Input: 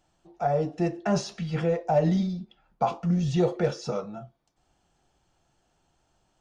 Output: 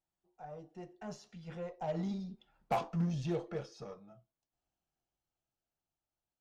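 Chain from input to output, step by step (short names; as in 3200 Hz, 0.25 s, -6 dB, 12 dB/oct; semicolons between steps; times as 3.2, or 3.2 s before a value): Doppler pass-by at 2.71, 14 m/s, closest 4.4 m; added harmonics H 8 -27 dB, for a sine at -20.5 dBFS; gain -5.5 dB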